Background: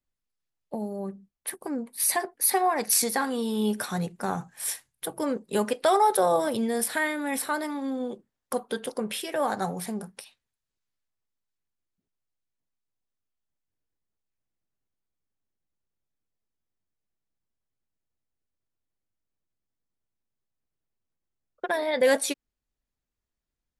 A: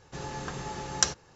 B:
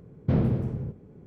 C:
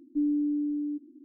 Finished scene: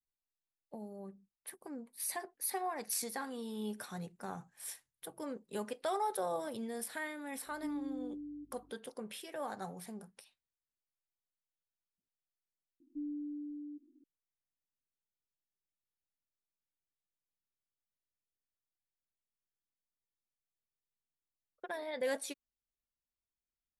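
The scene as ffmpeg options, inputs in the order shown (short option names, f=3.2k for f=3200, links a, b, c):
-filter_complex "[3:a]asplit=2[a][b];[0:a]volume=-14dB[c];[a]aeval=exprs='val(0)+0.00224*(sin(2*PI*50*n/s)+sin(2*PI*2*50*n/s)/2+sin(2*PI*3*50*n/s)/3+sin(2*PI*4*50*n/s)/4+sin(2*PI*5*50*n/s)/5)':c=same,atrim=end=1.24,asetpts=PTS-STARTPTS,volume=-14.5dB,afade=t=in:d=0.004:c=hsin,afade=t=out:st=1.236:d=0.004:c=hsin,adelay=7470[d];[b]atrim=end=1.24,asetpts=PTS-STARTPTS,volume=-14dB,afade=t=in:d=0.004:c=hsin,afade=t=out:st=1.236:d=0.004:c=hsin,adelay=12800[e];[c][d][e]amix=inputs=3:normalize=0"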